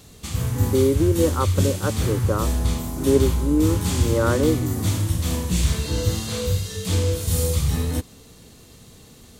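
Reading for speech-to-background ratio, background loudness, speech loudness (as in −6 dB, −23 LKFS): 0.0 dB, −23.5 LKFS, −23.5 LKFS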